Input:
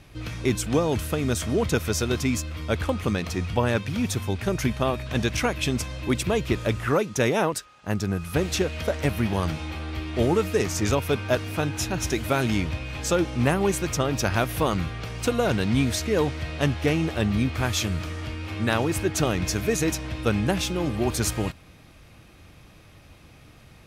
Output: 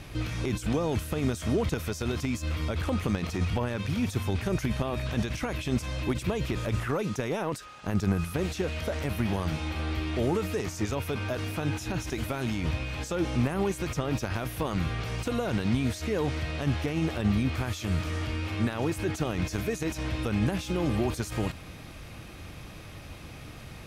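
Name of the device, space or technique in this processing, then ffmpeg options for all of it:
de-esser from a sidechain: -filter_complex "[0:a]asplit=2[a][b];[b]highpass=f=4.4k:p=1,apad=whole_len=1052604[c];[a][c]sidechaincompress=threshold=-50dB:ratio=4:attack=1.1:release=26,volume=6.5dB"

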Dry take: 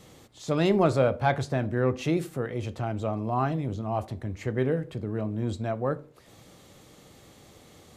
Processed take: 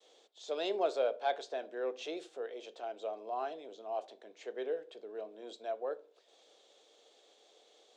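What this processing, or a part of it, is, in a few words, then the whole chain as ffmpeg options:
phone speaker on a table: -af "agate=range=-33dB:threshold=-51dB:ratio=3:detection=peak,highpass=f=160:w=0.5412,highpass=f=160:w=1.3066,highpass=f=430:w=0.5412,highpass=f=430:w=1.3066,equalizer=f=440:t=q:w=4:g=5,equalizer=f=700:t=q:w=4:g=8,equalizer=f=1.2k:t=q:w=4:g=-7,equalizer=f=2k:t=q:w=4:g=-7,equalizer=f=3.5k:t=q:w=4:g=7,lowpass=f=7.2k:w=0.5412,lowpass=f=7.2k:w=1.3066,equalizer=f=770:w=1.9:g=-5,volume=-8.5dB"

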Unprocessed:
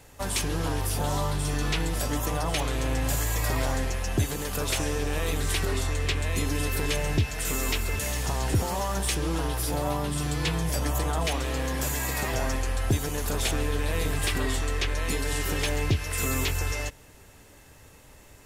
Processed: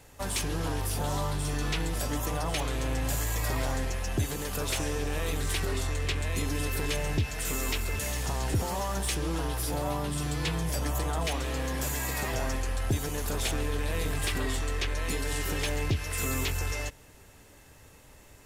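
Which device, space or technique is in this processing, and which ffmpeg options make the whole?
parallel distortion: -filter_complex "[0:a]asplit=2[a][b];[b]asoftclip=type=hard:threshold=-27dB,volume=-8dB[c];[a][c]amix=inputs=2:normalize=0,volume=-5dB"

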